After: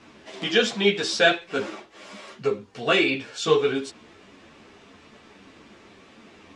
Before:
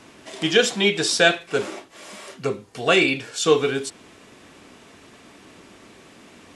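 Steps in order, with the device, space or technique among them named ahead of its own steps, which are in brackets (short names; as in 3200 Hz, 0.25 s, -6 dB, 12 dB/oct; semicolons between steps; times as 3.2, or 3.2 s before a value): string-machine ensemble chorus (ensemble effect; LPF 5300 Hz 12 dB/oct); gain +1 dB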